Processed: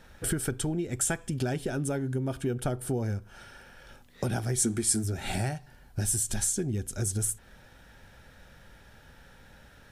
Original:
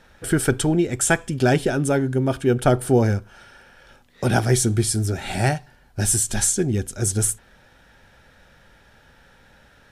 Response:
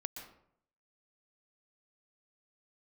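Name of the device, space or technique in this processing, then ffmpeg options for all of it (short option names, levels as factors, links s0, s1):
ASMR close-microphone chain: -filter_complex "[0:a]lowshelf=f=240:g=5,acompressor=threshold=0.0562:ratio=5,highshelf=f=8700:g=7.5,asplit=3[s0][s1][s2];[s0]afade=t=out:st=4.57:d=0.02[s3];[s1]equalizer=f=125:t=o:w=1:g=-9,equalizer=f=250:t=o:w=1:g=9,equalizer=f=1000:t=o:w=1:g=6,equalizer=f=2000:t=o:w=1:g=6,equalizer=f=8000:t=o:w=1:g=8,afade=t=in:st=4.57:d=0.02,afade=t=out:st=5.03:d=0.02[s4];[s2]afade=t=in:st=5.03:d=0.02[s5];[s3][s4][s5]amix=inputs=3:normalize=0,volume=0.708"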